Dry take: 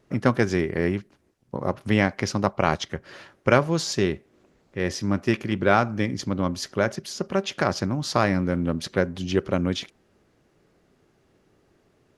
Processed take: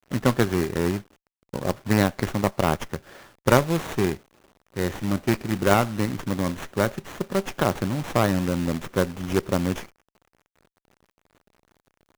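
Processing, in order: companded quantiser 4-bit; sliding maximum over 9 samples; trim -1 dB

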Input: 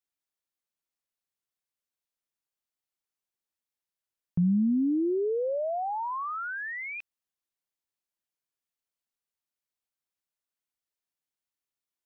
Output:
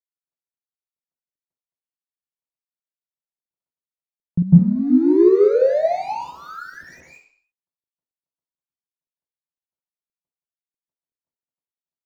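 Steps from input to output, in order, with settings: median filter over 41 samples; 4.42–5.29 s: compressor with a negative ratio -28 dBFS, ratio -0.5; reverberation RT60 0.55 s, pre-delay 150 ms, DRR -11 dB; trim -4.5 dB

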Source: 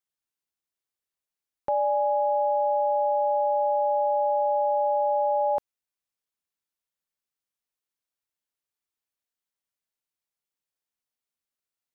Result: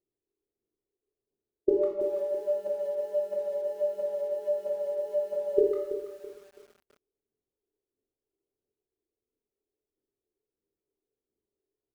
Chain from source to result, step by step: peaking EQ 180 Hz -8 dB 0.27 oct; peak limiter -24.5 dBFS, peak gain reduction 7 dB; formant shift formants -6 st; resonant low-pass 390 Hz, resonance Q 4.6; phaser 1.5 Hz, delay 3 ms, feedback 48%; speakerphone echo 150 ms, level -11 dB; reverberation RT60 0.75 s, pre-delay 19 ms, DRR -0.5 dB; bit-crushed delay 330 ms, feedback 35%, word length 9-bit, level -11 dB; trim +3.5 dB

